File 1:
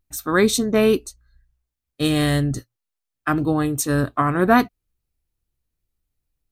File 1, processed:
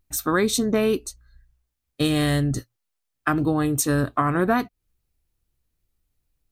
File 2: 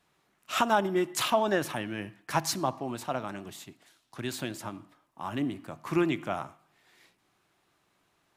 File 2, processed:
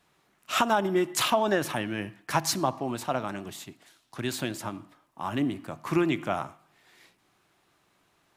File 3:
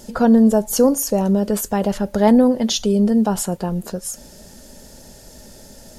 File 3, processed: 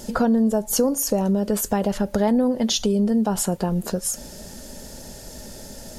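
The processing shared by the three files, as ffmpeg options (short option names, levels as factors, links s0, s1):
-af "acompressor=threshold=0.0708:ratio=3,volume=1.5"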